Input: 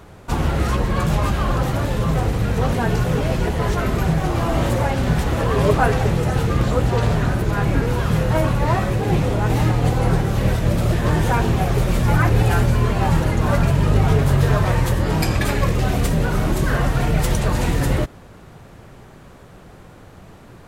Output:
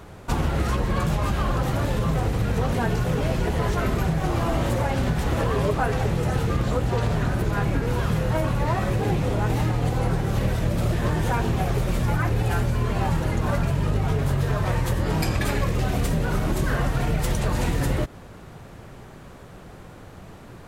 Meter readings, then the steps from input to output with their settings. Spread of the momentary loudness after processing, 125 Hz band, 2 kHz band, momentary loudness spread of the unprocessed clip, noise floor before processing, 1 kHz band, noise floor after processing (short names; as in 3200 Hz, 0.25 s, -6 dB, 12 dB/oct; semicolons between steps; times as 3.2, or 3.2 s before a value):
5 LU, -5.0 dB, -5.0 dB, 4 LU, -43 dBFS, -4.5 dB, -43 dBFS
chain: compressor, threshold -19 dBFS, peak gain reduction 8.5 dB